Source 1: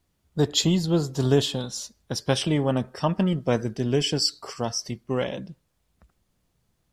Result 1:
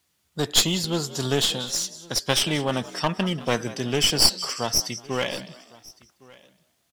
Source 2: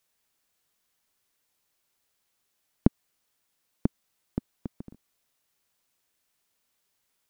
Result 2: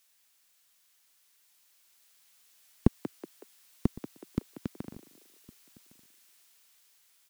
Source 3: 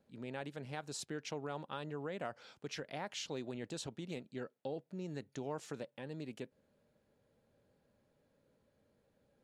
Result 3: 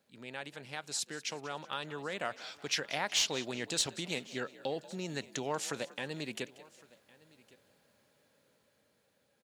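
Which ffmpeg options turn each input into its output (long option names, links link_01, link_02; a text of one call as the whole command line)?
ffmpeg -i in.wav -filter_complex "[0:a]highpass=85,tiltshelf=frequency=970:gain=-7,asplit=2[link_01][link_02];[link_02]asplit=3[link_03][link_04][link_05];[link_03]adelay=186,afreqshift=58,volume=-18dB[link_06];[link_04]adelay=372,afreqshift=116,volume=-26.2dB[link_07];[link_05]adelay=558,afreqshift=174,volume=-34.4dB[link_08];[link_06][link_07][link_08]amix=inputs=3:normalize=0[link_09];[link_01][link_09]amix=inputs=2:normalize=0,dynaudnorm=framelen=630:gausssize=7:maxgain=7.5dB,aeval=exprs='clip(val(0),-1,0.0596)':channel_layout=same,asplit=2[link_10][link_11];[link_11]aecho=0:1:1110:0.0668[link_12];[link_10][link_12]amix=inputs=2:normalize=0,volume=1.5dB" out.wav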